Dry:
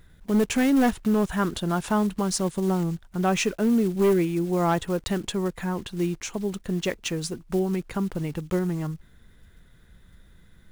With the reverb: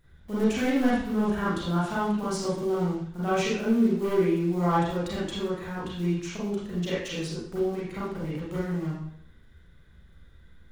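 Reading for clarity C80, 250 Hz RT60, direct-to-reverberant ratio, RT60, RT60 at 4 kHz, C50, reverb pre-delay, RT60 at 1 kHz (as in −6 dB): 4.5 dB, 0.60 s, −9.5 dB, 0.65 s, 0.60 s, −1.5 dB, 30 ms, 0.65 s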